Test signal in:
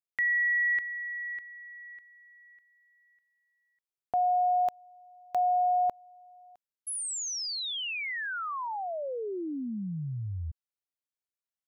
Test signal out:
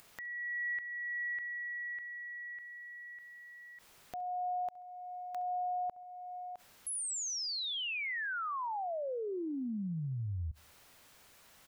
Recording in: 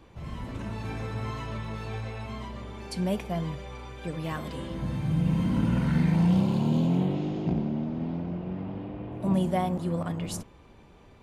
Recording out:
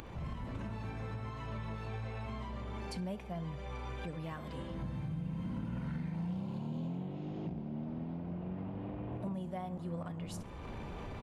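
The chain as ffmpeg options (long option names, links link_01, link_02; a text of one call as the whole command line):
ffmpeg -i in.wav -filter_complex "[0:a]highshelf=frequency=3400:gain=-8.5,acompressor=mode=upward:threshold=-35dB:ratio=2.5:attack=6.9:release=31:knee=2.83:detection=peak,equalizer=frequency=340:width_type=o:width=1.1:gain=-3,asplit=2[link_01][link_02];[link_02]aecho=0:1:67|134|201:0.0708|0.029|0.0119[link_03];[link_01][link_03]amix=inputs=2:normalize=0,acompressor=threshold=-35dB:ratio=6:attack=0.24:release=665:knee=1:detection=rms,volume=1dB" out.wav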